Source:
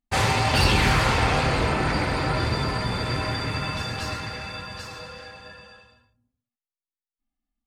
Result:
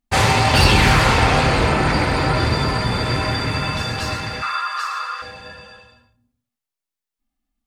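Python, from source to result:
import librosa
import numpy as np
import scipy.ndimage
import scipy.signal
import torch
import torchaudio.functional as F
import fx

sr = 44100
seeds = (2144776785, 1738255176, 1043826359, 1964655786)

y = fx.highpass_res(x, sr, hz=1200.0, q=11.0, at=(4.42, 5.22))
y = fx.rev_schroeder(y, sr, rt60_s=0.49, comb_ms=26, drr_db=15.5)
y = F.gain(torch.from_numpy(y), 6.0).numpy()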